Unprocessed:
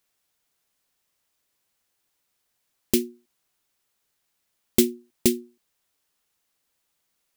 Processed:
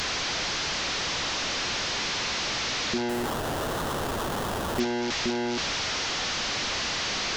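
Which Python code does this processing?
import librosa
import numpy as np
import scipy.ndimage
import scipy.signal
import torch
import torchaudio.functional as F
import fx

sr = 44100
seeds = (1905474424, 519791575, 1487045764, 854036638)

y = fx.delta_mod(x, sr, bps=32000, step_db=-17.0)
y = fx.sample_hold(y, sr, seeds[0], rate_hz=2300.0, jitter_pct=20, at=(3.09, 4.8))
y = fx.transient(y, sr, attack_db=-6, sustain_db=1)
y = F.gain(torch.from_numpy(y), -5.0).numpy()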